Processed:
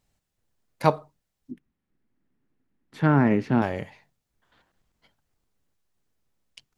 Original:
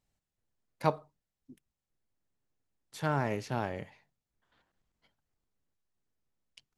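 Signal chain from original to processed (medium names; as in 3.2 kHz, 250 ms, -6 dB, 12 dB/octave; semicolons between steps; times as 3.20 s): 1.51–3.62 s: FFT filter 110 Hz 0 dB, 250 Hz +11 dB, 580 Hz -3 dB, 1.9 kHz +1 dB, 7 kHz -17 dB; trim +8 dB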